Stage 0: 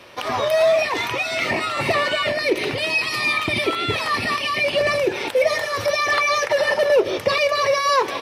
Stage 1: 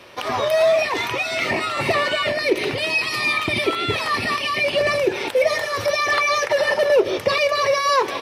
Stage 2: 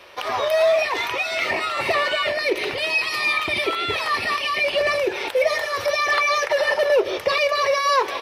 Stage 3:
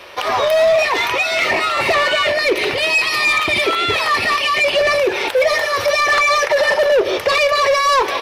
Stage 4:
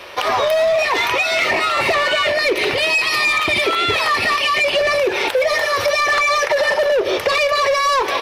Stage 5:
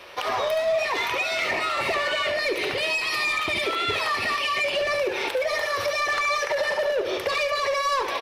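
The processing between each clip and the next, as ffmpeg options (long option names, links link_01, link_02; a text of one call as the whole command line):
ffmpeg -i in.wav -af "equalizer=frequency=390:width=7.5:gain=2.5" out.wav
ffmpeg -i in.wav -af "equalizer=frequency=125:width_type=o:width=1:gain=-11,equalizer=frequency=250:width_type=o:width=1:gain=-8,equalizer=frequency=8000:width_type=o:width=1:gain=-4" out.wav
ffmpeg -i in.wav -af "asoftclip=type=tanh:threshold=-17dB,volume=8dB" out.wav
ffmpeg -i in.wav -af "acompressor=threshold=-16dB:ratio=6,volume=2dB" out.wav
ffmpeg -i in.wav -af "aecho=1:1:71:0.355,volume=-8.5dB" out.wav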